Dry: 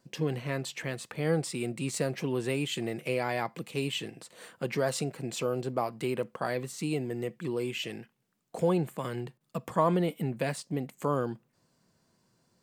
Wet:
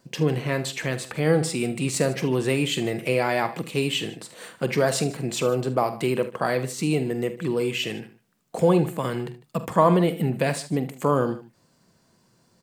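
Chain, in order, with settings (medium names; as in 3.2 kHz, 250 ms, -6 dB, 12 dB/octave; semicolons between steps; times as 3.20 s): multi-tap echo 46/71/77/151 ms -13.5/-20/-17.5/-19.5 dB; trim +7.5 dB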